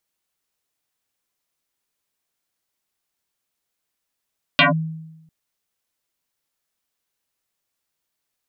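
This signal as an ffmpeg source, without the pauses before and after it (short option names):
-f lavfi -i "aevalsrc='0.376*pow(10,-3*t/0.99)*sin(2*PI*160*t+8.7*clip(1-t/0.14,0,1)*sin(2*PI*2.69*160*t))':d=0.7:s=44100"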